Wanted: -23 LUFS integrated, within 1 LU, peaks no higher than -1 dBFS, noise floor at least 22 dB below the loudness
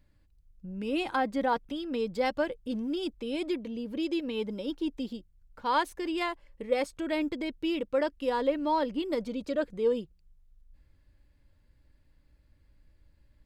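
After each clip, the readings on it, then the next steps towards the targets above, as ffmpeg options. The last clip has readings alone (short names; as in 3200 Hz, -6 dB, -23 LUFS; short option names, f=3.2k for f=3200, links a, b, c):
loudness -31.5 LUFS; peak -15.0 dBFS; loudness target -23.0 LUFS
-> -af "volume=8.5dB"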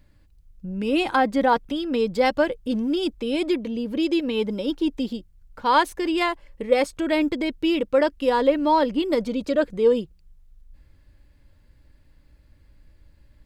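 loudness -23.0 LUFS; peak -6.5 dBFS; noise floor -57 dBFS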